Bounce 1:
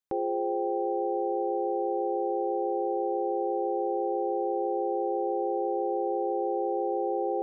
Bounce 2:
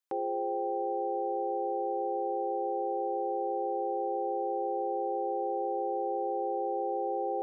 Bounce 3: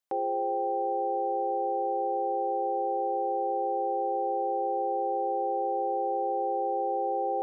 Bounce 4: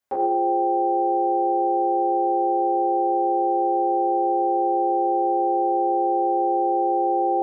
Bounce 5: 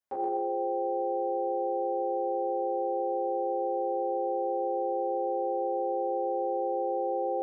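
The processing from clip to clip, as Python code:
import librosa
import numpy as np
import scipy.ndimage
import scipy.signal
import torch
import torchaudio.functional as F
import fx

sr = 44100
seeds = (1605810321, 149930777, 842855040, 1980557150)

y1 = fx.highpass(x, sr, hz=710.0, slope=6)
y1 = y1 * librosa.db_to_amplitude(1.5)
y2 = fx.peak_eq(y1, sr, hz=670.0, db=8.0, octaves=0.5)
y3 = fx.rev_fdn(y2, sr, rt60_s=0.88, lf_ratio=0.95, hf_ratio=0.35, size_ms=74.0, drr_db=-9.0)
y4 = fx.echo_feedback(y3, sr, ms=128, feedback_pct=35, wet_db=-3.5)
y4 = y4 * librosa.db_to_amplitude(-9.0)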